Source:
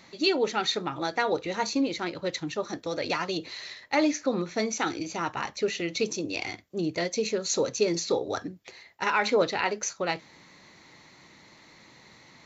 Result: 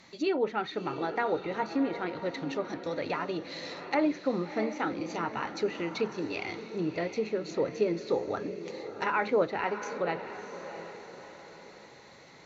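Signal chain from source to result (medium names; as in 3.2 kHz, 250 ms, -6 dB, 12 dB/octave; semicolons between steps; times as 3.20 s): low-pass that closes with the level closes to 1.9 kHz, closed at -25.5 dBFS; echo that smears into a reverb 673 ms, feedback 46%, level -10 dB; trim -2.5 dB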